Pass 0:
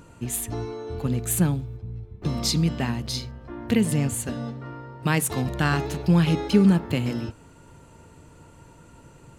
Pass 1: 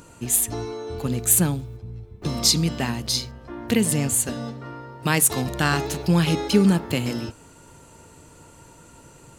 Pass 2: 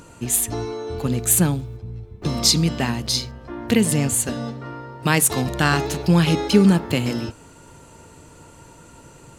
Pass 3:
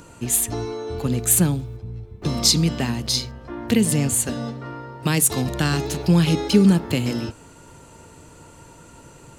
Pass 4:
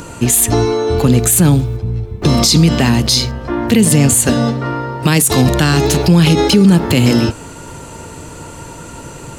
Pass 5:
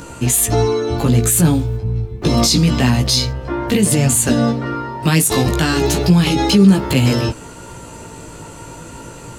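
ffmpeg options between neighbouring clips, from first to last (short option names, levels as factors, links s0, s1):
-af "bass=f=250:g=-4,treble=f=4000:g=7,volume=1.33"
-af "highshelf=f=8500:g=-5,volume=1.41"
-filter_complex "[0:a]acrossover=split=440|3000[s0][s1][s2];[s1]acompressor=threshold=0.0251:ratio=2[s3];[s0][s3][s2]amix=inputs=3:normalize=0"
-af "alimiter=level_in=5.96:limit=0.891:release=50:level=0:latency=1,volume=0.891"
-af "flanger=delay=15:depth=3.3:speed=0.29"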